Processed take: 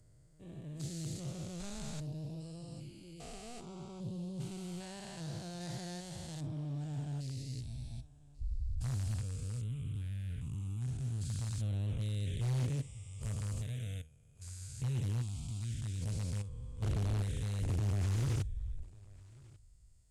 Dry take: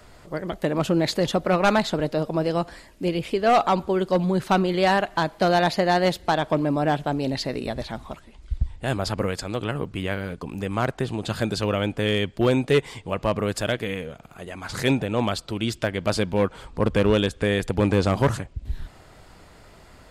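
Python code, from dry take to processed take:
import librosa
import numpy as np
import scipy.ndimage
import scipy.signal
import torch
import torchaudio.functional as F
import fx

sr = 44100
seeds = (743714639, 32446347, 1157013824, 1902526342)

p1 = fx.spec_steps(x, sr, hold_ms=400)
p2 = fx.noise_reduce_blind(p1, sr, reduce_db=11)
p3 = fx.curve_eq(p2, sr, hz=(130.0, 190.0, 580.0, 1300.0, 4100.0, 8400.0), db=(0, -15, -23, -25, -10, 15))
p4 = (np.mod(10.0 ** (24.0 / 20.0) * p3 + 1.0, 2.0) - 1.0) / 10.0 ** (24.0 / 20.0)
p5 = p3 + (p4 * 10.0 ** (-4.0 / 20.0))
p6 = fx.air_absorb(p5, sr, metres=90.0)
p7 = p6 + fx.echo_single(p6, sr, ms=1142, db=-24.0, dry=0)
p8 = fx.doppler_dist(p7, sr, depth_ms=0.4)
y = p8 * 10.0 ** (-6.5 / 20.0)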